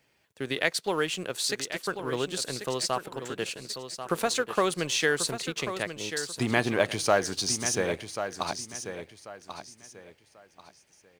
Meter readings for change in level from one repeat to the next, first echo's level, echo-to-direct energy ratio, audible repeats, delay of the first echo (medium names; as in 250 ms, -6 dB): -11.5 dB, -9.5 dB, -9.0 dB, 3, 1089 ms